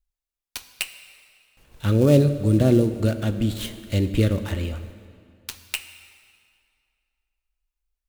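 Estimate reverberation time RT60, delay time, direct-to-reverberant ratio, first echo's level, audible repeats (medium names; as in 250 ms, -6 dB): 2.3 s, no echo, 10.5 dB, no echo, no echo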